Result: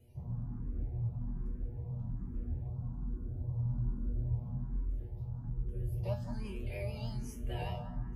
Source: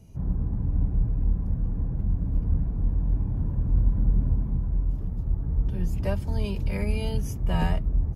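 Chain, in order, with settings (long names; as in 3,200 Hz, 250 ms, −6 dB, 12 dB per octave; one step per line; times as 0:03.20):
0:05.49–0:06.04: graphic EQ with 10 bands 125 Hz +7 dB, 250 Hz −9 dB, 500 Hz +7 dB, 1,000 Hz −7 dB, 2,000 Hz −7 dB, 4,000 Hz −11 dB
pitch vibrato 6.4 Hz 62 cents
0:02.67–0:04.28: elliptic band-stop filter 1,500–3,800 Hz
in parallel at −7.5 dB: soft clipping −33 dBFS, distortion −5 dB
on the sum: tuned comb filter 120 Hz, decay 0.32 s, harmonics all, mix 90%
on a send: feedback echo with a low-pass in the loop 188 ms, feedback 54%, low-pass 1,600 Hz, level −8.5 dB
on the sum: frequency shifter mixed with the dry sound +1.2 Hz
level +1 dB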